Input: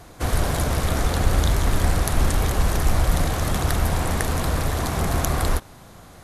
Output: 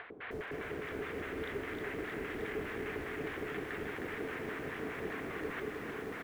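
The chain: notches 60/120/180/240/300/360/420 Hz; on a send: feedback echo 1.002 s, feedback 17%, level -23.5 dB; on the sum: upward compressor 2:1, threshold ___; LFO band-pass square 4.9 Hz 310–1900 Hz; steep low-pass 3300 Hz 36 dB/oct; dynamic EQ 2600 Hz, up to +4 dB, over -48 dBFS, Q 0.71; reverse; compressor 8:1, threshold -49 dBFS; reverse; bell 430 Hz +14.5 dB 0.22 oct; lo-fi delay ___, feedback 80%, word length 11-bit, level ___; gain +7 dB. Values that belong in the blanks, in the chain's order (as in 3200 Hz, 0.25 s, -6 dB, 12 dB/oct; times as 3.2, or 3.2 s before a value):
-30 dBFS, 0.311 s, -4.5 dB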